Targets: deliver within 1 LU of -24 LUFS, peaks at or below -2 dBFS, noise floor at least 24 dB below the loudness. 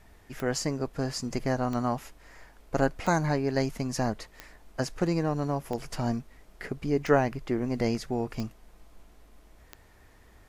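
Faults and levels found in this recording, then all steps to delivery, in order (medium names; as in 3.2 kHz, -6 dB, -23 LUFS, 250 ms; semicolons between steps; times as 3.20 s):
clicks found 8; loudness -30.0 LUFS; peak level -9.5 dBFS; loudness target -24.0 LUFS
-> de-click; trim +6 dB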